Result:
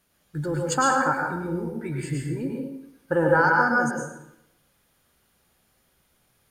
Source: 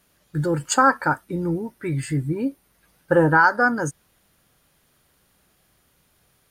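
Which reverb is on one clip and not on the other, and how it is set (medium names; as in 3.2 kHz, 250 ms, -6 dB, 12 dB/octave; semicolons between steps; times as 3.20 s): plate-style reverb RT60 0.81 s, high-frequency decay 0.8×, pre-delay 95 ms, DRR -0.5 dB; trim -6 dB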